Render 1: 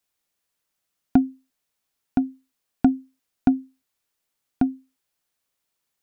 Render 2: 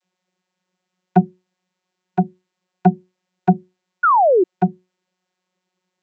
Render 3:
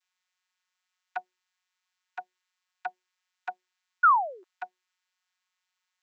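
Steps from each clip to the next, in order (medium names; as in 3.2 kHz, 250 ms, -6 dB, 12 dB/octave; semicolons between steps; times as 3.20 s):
band-stop 1.3 kHz, Q 28; vocoder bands 32, saw 183 Hz; painted sound fall, 4.03–4.44 s, 340–1500 Hz -17 dBFS; trim +4 dB
high-pass 1.1 kHz 24 dB/octave; trim -2.5 dB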